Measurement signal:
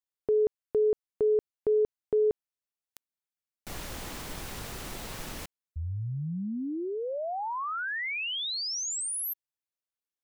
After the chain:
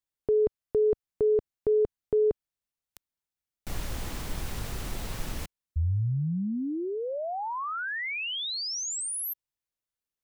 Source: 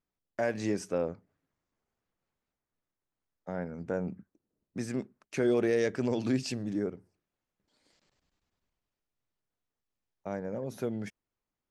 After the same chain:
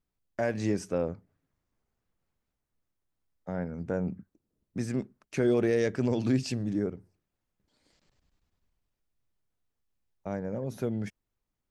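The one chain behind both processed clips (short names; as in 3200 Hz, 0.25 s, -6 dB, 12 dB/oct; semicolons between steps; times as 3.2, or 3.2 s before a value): low shelf 140 Hz +10.5 dB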